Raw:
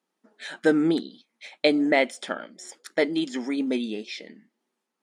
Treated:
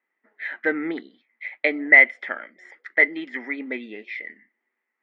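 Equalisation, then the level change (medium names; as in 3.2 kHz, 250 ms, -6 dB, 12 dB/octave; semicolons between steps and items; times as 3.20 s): high-pass 280 Hz 12 dB/octave; resonant low-pass 2 kHz, resonance Q 12; -4.5 dB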